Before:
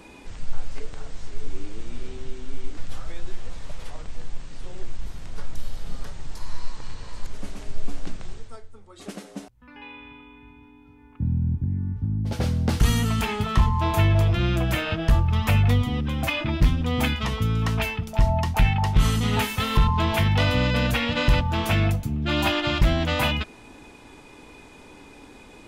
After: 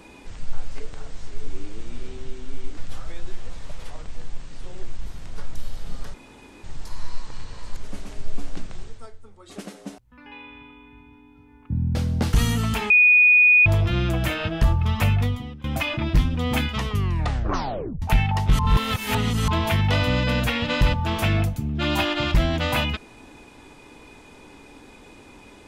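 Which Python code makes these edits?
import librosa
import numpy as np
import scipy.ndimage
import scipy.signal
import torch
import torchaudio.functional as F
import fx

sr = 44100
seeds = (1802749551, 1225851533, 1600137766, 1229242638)

y = fx.edit(x, sr, fx.insert_room_tone(at_s=6.14, length_s=0.5),
    fx.cut(start_s=11.45, length_s=0.97),
    fx.bleep(start_s=13.37, length_s=0.76, hz=2470.0, db=-11.0),
    fx.fade_out_to(start_s=15.51, length_s=0.6, floor_db=-20.5),
    fx.tape_stop(start_s=17.35, length_s=1.14),
    fx.reverse_span(start_s=19.06, length_s=0.89), tone=tone)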